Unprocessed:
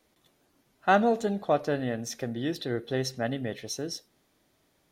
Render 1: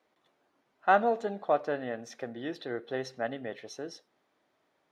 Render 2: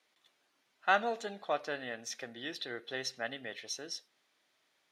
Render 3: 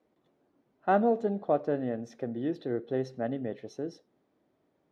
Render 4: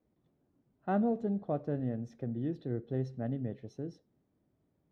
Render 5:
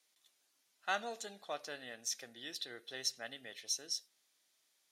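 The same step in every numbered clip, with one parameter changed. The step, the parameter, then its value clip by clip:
band-pass, frequency: 980, 2600, 370, 120, 6900 Hz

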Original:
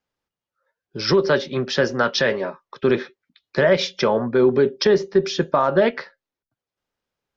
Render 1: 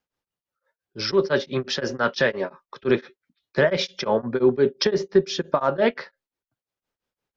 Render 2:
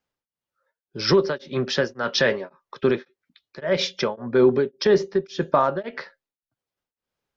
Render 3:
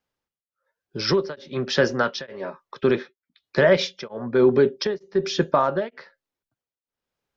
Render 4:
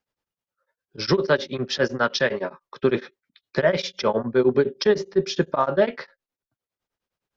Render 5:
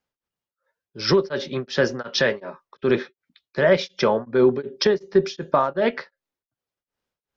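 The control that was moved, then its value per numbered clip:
beating tremolo, nulls at: 5.8, 1.8, 1.1, 9.8, 2.7 Hz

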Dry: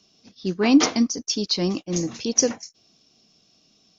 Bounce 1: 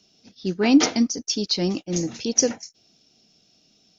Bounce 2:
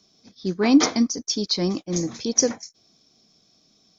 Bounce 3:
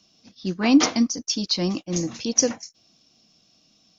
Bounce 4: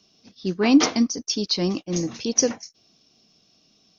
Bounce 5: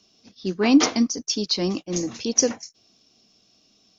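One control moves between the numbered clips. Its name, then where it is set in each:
notch, frequency: 1100, 2800, 410, 7200, 160 Hz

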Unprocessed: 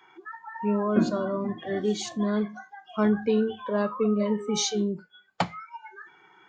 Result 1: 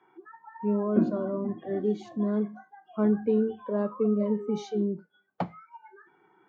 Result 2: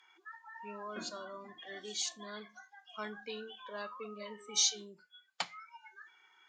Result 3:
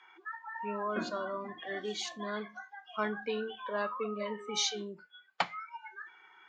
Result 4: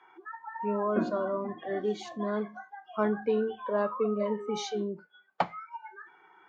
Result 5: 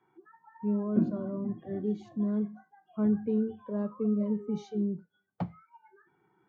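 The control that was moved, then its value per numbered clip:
band-pass, frequency: 300, 6100, 2200, 810, 110 Hz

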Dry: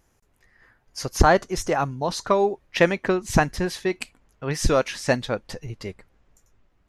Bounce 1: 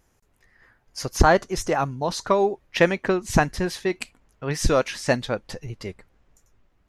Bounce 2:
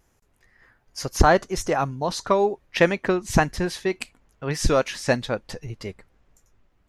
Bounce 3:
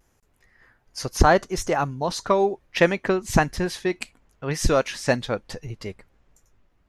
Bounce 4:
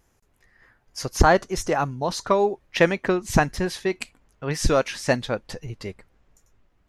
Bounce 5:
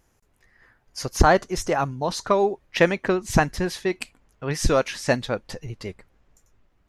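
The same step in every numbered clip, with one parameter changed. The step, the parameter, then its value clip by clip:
vibrato, rate: 8.1, 2.1, 0.7, 3.4, 13 Hz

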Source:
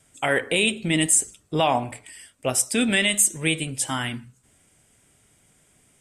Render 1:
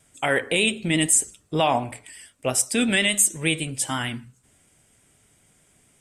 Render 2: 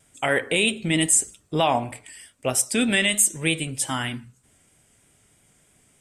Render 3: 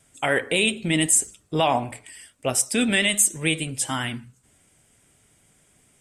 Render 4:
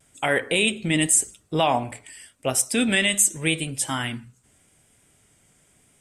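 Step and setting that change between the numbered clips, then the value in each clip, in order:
vibrato, rate: 8.4, 3.2, 13, 0.87 Hz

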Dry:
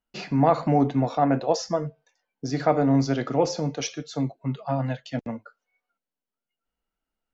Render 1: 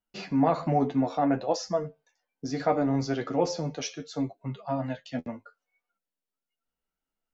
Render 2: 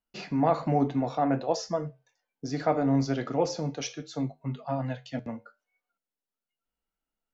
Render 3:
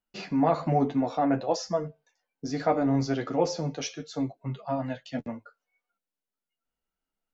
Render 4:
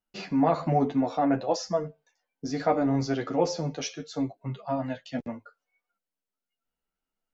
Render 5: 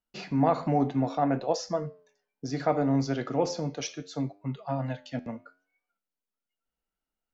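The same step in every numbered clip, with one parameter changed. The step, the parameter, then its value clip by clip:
flange, regen: +30, -73, -19, +2, +86%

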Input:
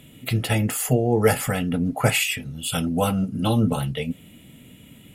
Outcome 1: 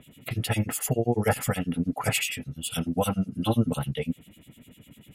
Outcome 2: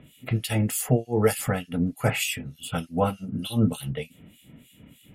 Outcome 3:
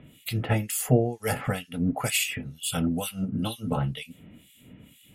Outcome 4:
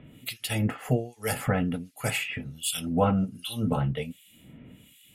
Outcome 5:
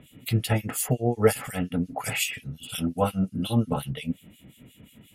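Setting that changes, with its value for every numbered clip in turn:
harmonic tremolo, rate: 10, 3.3, 2.1, 1.3, 5.6 Hz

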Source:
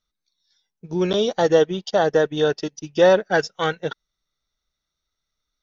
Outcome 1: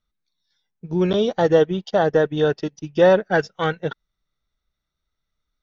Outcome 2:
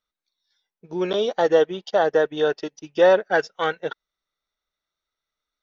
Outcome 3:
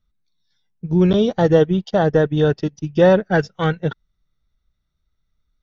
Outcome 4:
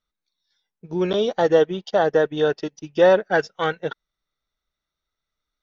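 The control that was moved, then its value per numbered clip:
tone controls, bass: +5, -12, +15, -3 dB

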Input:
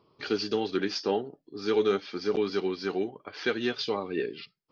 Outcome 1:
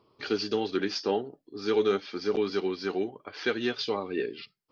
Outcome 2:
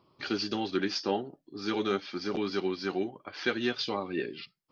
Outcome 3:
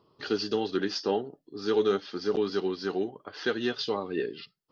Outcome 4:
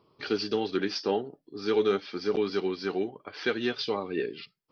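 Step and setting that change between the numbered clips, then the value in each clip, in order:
notch, frequency: 160, 440, 2300, 6700 Hz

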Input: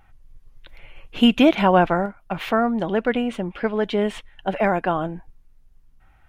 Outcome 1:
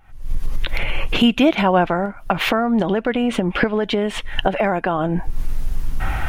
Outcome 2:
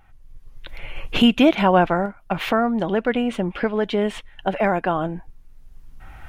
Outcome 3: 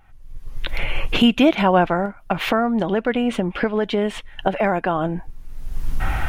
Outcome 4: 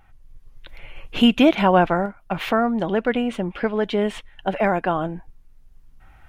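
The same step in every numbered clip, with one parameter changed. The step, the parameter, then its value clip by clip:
recorder AGC, rising by: 89, 12, 35, 5 dB/s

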